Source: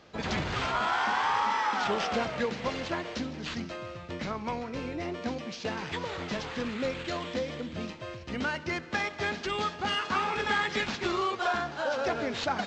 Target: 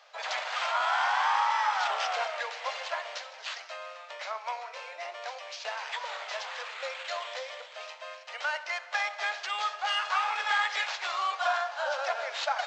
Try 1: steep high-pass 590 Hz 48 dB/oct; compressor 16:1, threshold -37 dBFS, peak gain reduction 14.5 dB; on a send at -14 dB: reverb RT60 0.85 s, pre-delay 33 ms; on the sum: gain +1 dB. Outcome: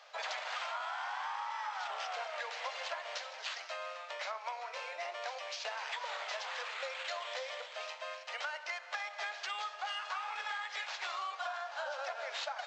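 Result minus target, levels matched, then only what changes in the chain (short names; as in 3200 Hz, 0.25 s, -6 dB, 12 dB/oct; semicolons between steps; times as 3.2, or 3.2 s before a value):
compressor: peak gain reduction +14.5 dB
remove: compressor 16:1, threshold -37 dBFS, peak gain reduction 14.5 dB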